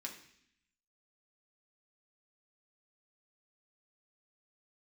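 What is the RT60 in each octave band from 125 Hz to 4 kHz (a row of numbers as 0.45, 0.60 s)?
0.95, 0.95, 0.70, 0.65, 0.90, 0.85 s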